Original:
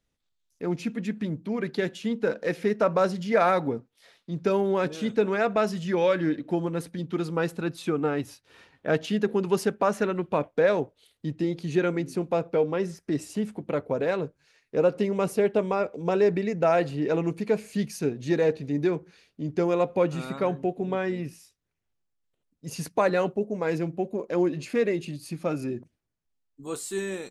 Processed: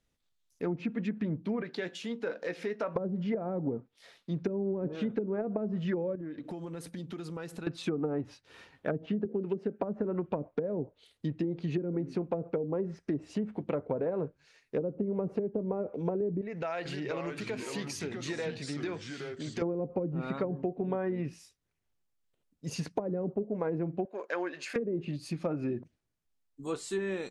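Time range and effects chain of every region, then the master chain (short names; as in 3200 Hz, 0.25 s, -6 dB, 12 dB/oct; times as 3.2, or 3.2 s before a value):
1.62–2.96 HPF 370 Hz 6 dB/oct + compressor 1.5:1, threshold -40 dBFS + doubler 17 ms -13 dB
6.15–7.67 high shelf 7800 Hz +8.5 dB + compressor 10:1, threshold -36 dBFS
9.25–9.79 HPF 190 Hz + bell 970 Hz -12 dB 1 oct
16.41–19.62 tilt shelf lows -6.5 dB, about 700 Hz + compressor 3:1, threshold -35 dBFS + echoes that change speed 0.445 s, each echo -3 st, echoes 2, each echo -6 dB
24.05–24.76 HPF 650 Hz + bell 1600 Hz +9.5 dB 0.45 oct
whole clip: treble ducked by the level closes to 330 Hz, closed at -20 dBFS; compressor, threshold -28 dBFS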